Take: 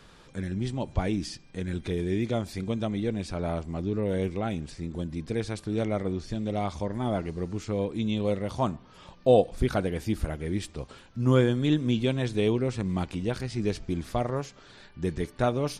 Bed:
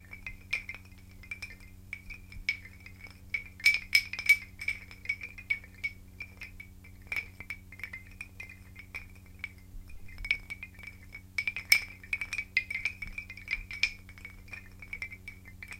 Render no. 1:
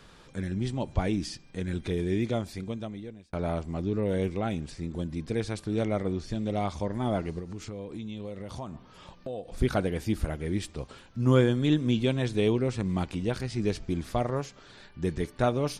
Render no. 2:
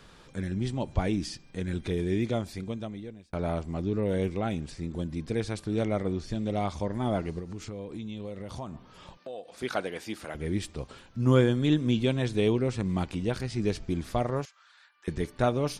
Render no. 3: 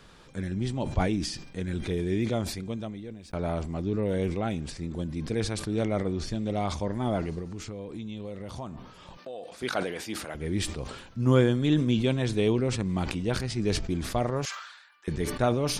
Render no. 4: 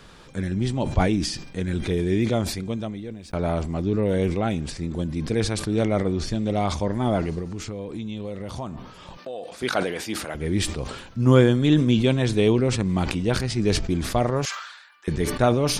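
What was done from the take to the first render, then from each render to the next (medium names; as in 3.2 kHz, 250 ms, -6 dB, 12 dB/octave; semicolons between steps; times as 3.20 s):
2.24–3.33 s: fade out; 7.39–9.49 s: compression, threshold -34 dBFS
9.17–10.35 s: frequency weighting A; 14.45–15.08 s: ladder high-pass 1 kHz, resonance 40%
decay stretcher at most 61 dB/s
trim +5.5 dB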